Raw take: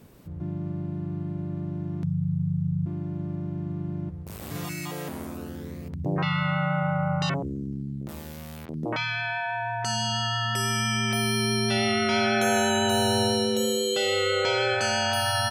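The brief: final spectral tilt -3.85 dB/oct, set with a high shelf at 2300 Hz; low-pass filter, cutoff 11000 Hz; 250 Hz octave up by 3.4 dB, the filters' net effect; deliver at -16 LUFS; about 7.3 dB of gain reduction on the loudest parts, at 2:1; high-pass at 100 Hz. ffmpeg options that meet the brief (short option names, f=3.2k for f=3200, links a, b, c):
-af "highpass=100,lowpass=11k,equalizer=f=250:t=o:g=5,highshelf=f=2.3k:g=6.5,acompressor=threshold=-31dB:ratio=2,volume=14dB"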